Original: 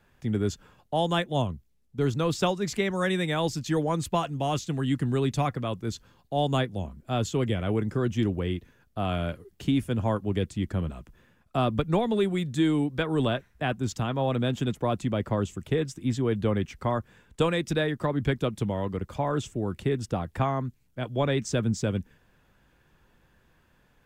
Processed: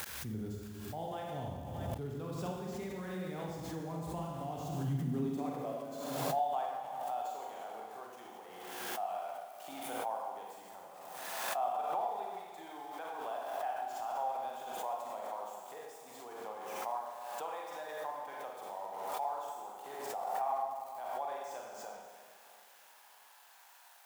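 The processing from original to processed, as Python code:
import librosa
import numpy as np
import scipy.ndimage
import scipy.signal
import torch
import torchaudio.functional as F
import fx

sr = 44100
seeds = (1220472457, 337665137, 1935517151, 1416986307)

y = x + 0.5 * 10.0 ** (-24.0 / 20.0) * np.diff(np.sign(x), prepend=np.sign(x[:1]))
y = fx.dynamic_eq(y, sr, hz=790.0, q=3.2, threshold_db=-45.0, ratio=4.0, max_db=5)
y = fx.filter_sweep_highpass(y, sr, from_hz=65.0, to_hz=790.0, start_s=4.55, end_s=5.85, q=4.3)
y = fx.rev_schroeder(y, sr, rt60_s=1.5, comb_ms=33, drr_db=-2.5)
y = fx.gate_flip(y, sr, shuts_db=-22.0, range_db=-25)
y = fx.high_shelf(y, sr, hz=2300.0, db=-12.0)
y = fx.echo_feedback(y, sr, ms=630, feedback_pct=34, wet_db=-18.5)
y = fx.pre_swell(y, sr, db_per_s=30.0)
y = F.gain(torch.from_numpy(y), 5.5).numpy()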